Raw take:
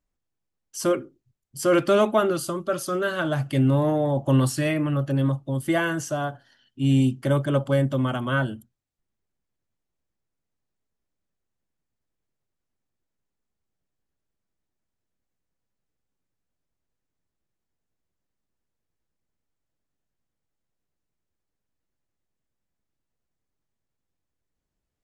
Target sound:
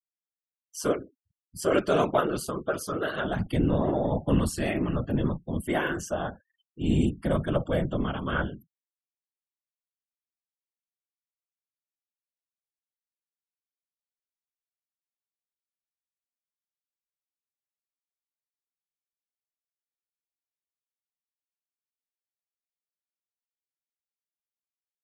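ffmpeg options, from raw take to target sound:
-af "afftfilt=real='hypot(re,im)*cos(2*PI*random(0))':imag='hypot(re,im)*sin(2*PI*random(1))':win_size=512:overlap=0.75,tremolo=f=150:d=0.333,afftfilt=real='re*gte(hypot(re,im),0.00251)':imag='im*gte(hypot(re,im),0.00251)':win_size=1024:overlap=0.75,volume=1.5"

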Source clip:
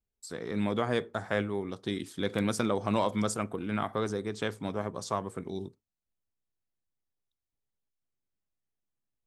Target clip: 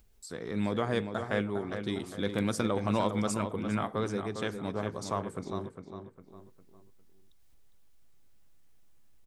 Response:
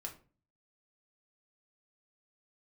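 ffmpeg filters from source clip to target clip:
-filter_complex "[0:a]acompressor=mode=upward:threshold=0.00316:ratio=2.5,lowshelf=f=61:g=8.5,asplit=2[s0][s1];[s1]adelay=405,lowpass=f=3100:p=1,volume=0.422,asplit=2[s2][s3];[s3]adelay=405,lowpass=f=3100:p=1,volume=0.39,asplit=2[s4][s5];[s5]adelay=405,lowpass=f=3100:p=1,volume=0.39,asplit=2[s6][s7];[s7]adelay=405,lowpass=f=3100:p=1,volume=0.39[s8];[s0][s2][s4][s6][s8]amix=inputs=5:normalize=0,volume=0.841"

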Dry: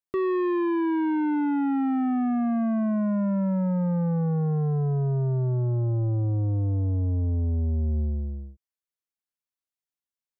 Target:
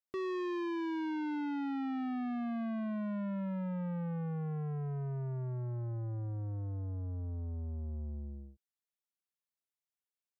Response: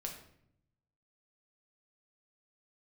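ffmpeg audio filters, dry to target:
-af "highpass=f=110:p=1,asoftclip=type=tanh:threshold=0.0355,volume=0.531"

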